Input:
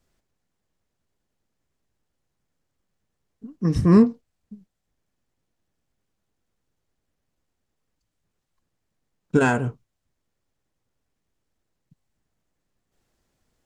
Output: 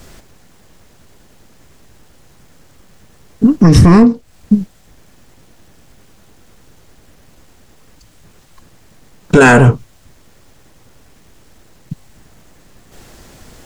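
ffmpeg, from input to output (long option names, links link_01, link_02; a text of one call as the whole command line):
ffmpeg -i in.wav -af "acompressor=threshold=-30dB:ratio=5,apsyclip=34dB,volume=-1.5dB" out.wav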